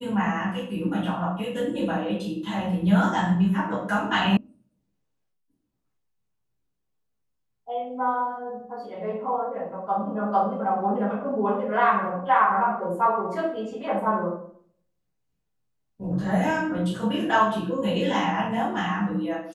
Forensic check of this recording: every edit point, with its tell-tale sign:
0:04.37: cut off before it has died away

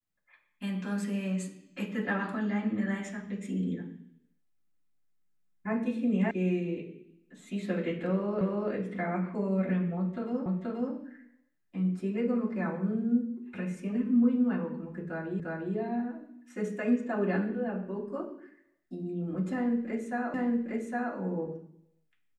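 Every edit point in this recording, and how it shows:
0:06.31: cut off before it has died away
0:08.41: the same again, the last 0.29 s
0:10.46: the same again, the last 0.48 s
0:15.40: the same again, the last 0.35 s
0:20.34: the same again, the last 0.81 s

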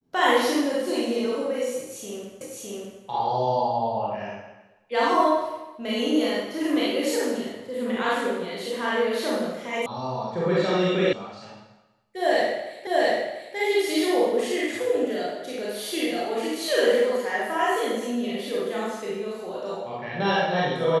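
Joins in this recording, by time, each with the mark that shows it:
0:02.41: the same again, the last 0.61 s
0:09.86: cut off before it has died away
0:11.13: cut off before it has died away
0:12.87: the same again, the last 0.69 s

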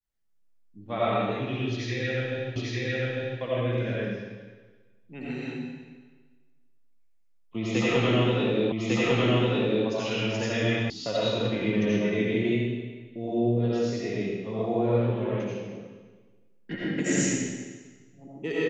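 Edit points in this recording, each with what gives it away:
0:02.56: the same again, the last 0.85 s
0:08.72: the same again, the last 1.15 s
0:10.90: cut off before it has died away

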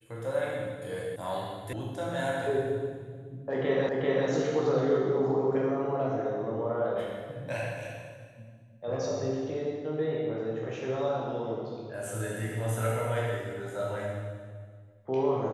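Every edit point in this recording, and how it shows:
0:01.16: cut off before it has died away
0:01.73: cut off before it has died away
0:03.89: the same again, the last 0.39 s

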